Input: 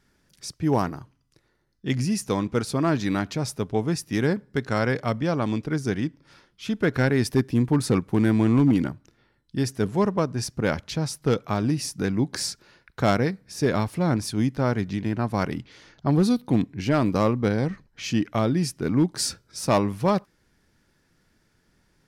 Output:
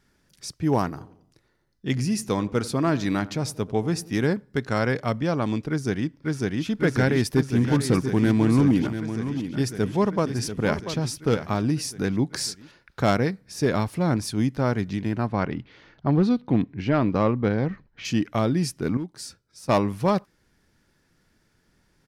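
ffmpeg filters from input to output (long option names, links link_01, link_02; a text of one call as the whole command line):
ffmpeg -i in.wav -filter_complex "[0:a]asplit=3[link_01][link_02][link_03];[link_01]afade=type=out:start_time=0.96:duration=0.02[link_04];[link_02]asplit=2[link_05][link_06];[link_06]adelay=89,lowpass=frequency=1100:poles=1,volume=-16.5dB,asplit=2[link_07][link_08];[link_08]adelay=89,lowpass=frequency=1100:poles=1,volume=0.51,asplit=2[link_09][link_10];[link_10]adelay=89,lowpass=frequency=1100:poles=1,volume=0.51,asplit=2[link_11][link_12];[link_12]adelay=89,lowpass=frequency=1100:poles=1,volume=0.51,asplit=2[link_13][link_14];[link_14]adelay=89,lowpass=frequency=1100:poles=1,volume=0.51[link_15];[link_05][link_07][link_09][link_11][link_13][link_15]amix=inputs=6:normalize=0,afade=type=in:start_time=0.96:duration=0.02,afade=type=out:start_time=4.24:duration=0.02[link_16];[link_03]afade=type=in:start_time=4.24:duration=0.02[link_17];[link_04][link_16][link_17]amix=inputs=3:normalize=0,asplit=2[link_18][link_19];[link_19]afade=type=in:start_time=5.69:duration=0.01,afade=type=out:start_time=6.66:duration=0.01,aecho=0:1:550|1100|1650|2200|2750|3300|3850|4400|4950|5500|6050|6600:0.944061|0.755249|0.604199|0.483359|0.386687|0.30935|0.24748|0.197984|0.158387|0.12671|0.101368|0.0810942[link_20];[link_18][link_20]amix=inputs=2:normalize=0,asplit=3[link_21][link_22][link_23];[link_21]afade=type=out:start_time=7.57:duration=0.02[link_24];[link_22]aecho=1:1:688:0.316,afade=type=in:start_time=7.57:duration=0.02,afade=type=out:start_time=11.46:duration=0.02[link_25];[link_23]afade=type=in:start_time=11.46:duration=0.02[link_26];[link_24][link_25][link_26]amix=inputs=3:normalize=0,asettb=1/sr,asplit=3[link_27][link_28][link_29];[link_27]atrim=end=15.274[link_30];[link_28]atrim=start=15.27:end=18.05,asetpts=PTS-STARTPTS,afade=type=in:duration=0.004:curve=qsin,afade=type=out:start_time=2.776:duration=0.004:curve=qsin,lowpass=3200[link_31];[link_29]atrim=start=18.046[link_32];[link_30][link_31]acrossfade=duration=0.004:curve1=hsin:curve2=qsin[link_33];[link_33][link_32]acrossfade=duration=0.004:curve1=qsin:curve2=hsin,asplit=3[link_34][link_35][link_36];[link_34]atrim=end=18.972[link_37];[link_35]atrim=start=18.968:end=19.692,asetpts=PTS-STARTPTS,volume=-11.5dB[link_38];[link_36]atrim=start=19.688[link_39];[link_37][link_38]acrossfade=duration=0.004:curve1=hsin:curve2=hsin[link_40];[link_40][link_39]acrossfade=duration=0.004:curve1=hsin:curve2=hsin" out.wav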